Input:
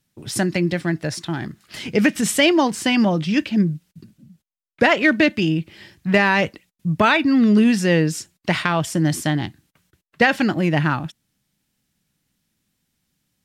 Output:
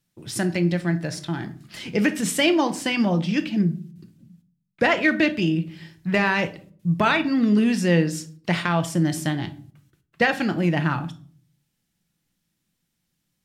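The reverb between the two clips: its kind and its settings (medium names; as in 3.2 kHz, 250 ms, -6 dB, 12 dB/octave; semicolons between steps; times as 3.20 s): simulated room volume 430 m³, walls furnished, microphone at 0.79 m; trim -4.5 dB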